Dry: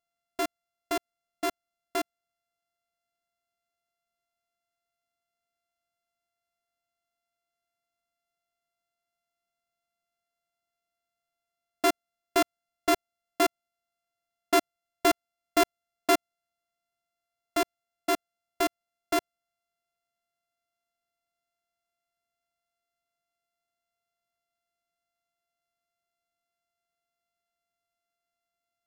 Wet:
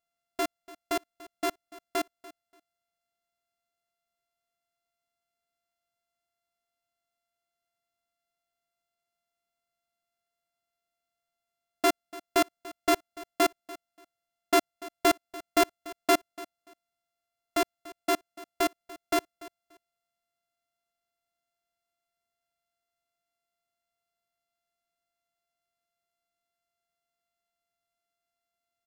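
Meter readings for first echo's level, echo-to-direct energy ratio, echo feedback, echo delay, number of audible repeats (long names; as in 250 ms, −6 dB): −19.0 dB, −19.0 dB, 19%, 290 ms, 2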